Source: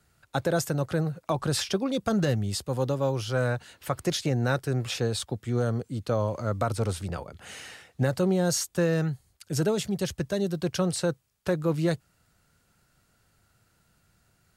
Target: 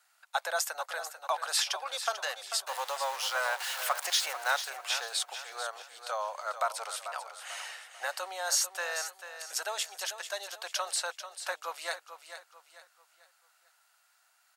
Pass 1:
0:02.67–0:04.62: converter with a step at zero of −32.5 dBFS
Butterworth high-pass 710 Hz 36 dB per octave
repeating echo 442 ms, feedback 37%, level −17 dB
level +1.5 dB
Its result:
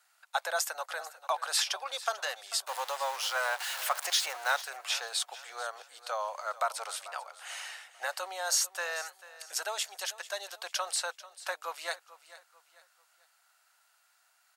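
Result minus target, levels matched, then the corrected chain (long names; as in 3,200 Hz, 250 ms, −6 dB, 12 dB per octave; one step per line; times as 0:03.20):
echo-to-direct −6.5 dB
0:02.67–0:04.62: converter with a step at zero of −32.5 dBFS
Butterworth high-pass 710 Hz 36 dB per octave
repeating echo 442 ms, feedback 37%, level −10.5 dB
level +1.5 dB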